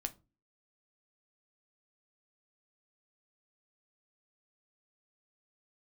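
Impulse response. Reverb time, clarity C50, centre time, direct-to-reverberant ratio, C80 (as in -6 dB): 0.30 s, 20.0 dB, 5 ms, 8.0 dB, 27.5 dB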